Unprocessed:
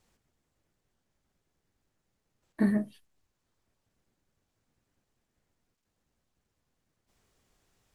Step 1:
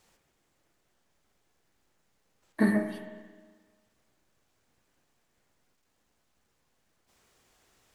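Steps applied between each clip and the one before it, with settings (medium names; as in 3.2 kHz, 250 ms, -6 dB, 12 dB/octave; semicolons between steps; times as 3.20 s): bass shelf 270 Hz -9.5 dB; spring tank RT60 1.5 s, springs 32/51 ms, chirp 80 ms, DRR 5.5 dB; trim +7 dB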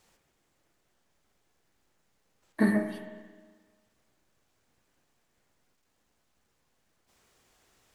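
no audible change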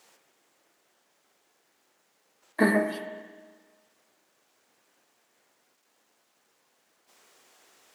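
high-pass 330 Hz 12 dB/octave; trim +7.5 dB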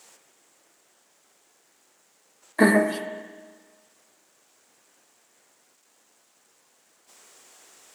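peaking EQ 7.8 kHz +8 dB 0.72 oct; trim +4.5 dB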